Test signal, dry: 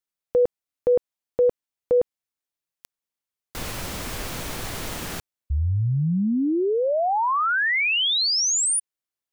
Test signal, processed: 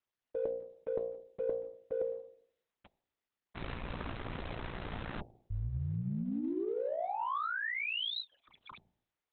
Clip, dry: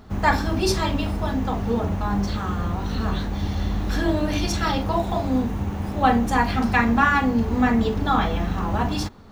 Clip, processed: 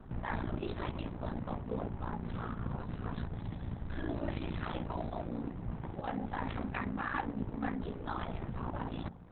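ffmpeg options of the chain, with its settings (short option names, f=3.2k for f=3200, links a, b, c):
-af "aeval=exprs='val(0)*sin(2*PI*29*n/s)':c=same,adynamicsmooth=sensitivity=2:basefreq=2.4k,bandreject=f=58.28:t=h:w=4,bandreject=f=116.56:t=h:w=4,bandreject=f=174.84:t=h:w=4,bandreject=f=233.12:t=h:w=4,bandreject=f=291.4:t=h:w=4,bandreject=f=349.68:t=h:w=4,bandreject=f=407.96:t=h:w=4,bandreject=f=466.24:t=h:w=4,bandreject=f=524.52:t=h:w=4,bandreject=f=582.8:t=h:w=4,bandreject=f=641.08:t=h:w=4,bandreject=f=699.36:t=h:w=4,bandreject=f=757.64:t=h:w=4,bandreject=f=815.92:t=h:w=4,bandreject=f=874.2:t=h:w=4,areverse,acompressor=threshold=-39dB:ratio=5:attack=55:release=63:knee=6:detection=peak,areverse" -ar 48000 -c:a libopus -b:a 6k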